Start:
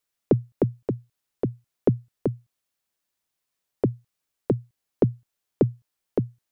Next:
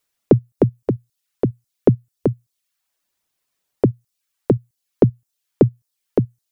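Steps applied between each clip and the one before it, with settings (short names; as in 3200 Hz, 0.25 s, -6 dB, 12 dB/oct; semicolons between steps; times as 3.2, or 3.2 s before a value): reverb removal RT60 0.53 s; gain +7 dB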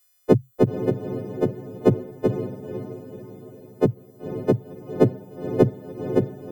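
frequency quantiser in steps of 3 st; diffused feedback echo 0.508 s, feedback 46%, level -9 dB; gain -1 dB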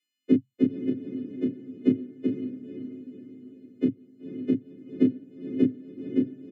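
vowel filter i; doubler 28 ms -4.5 dB; gain +4.5 dB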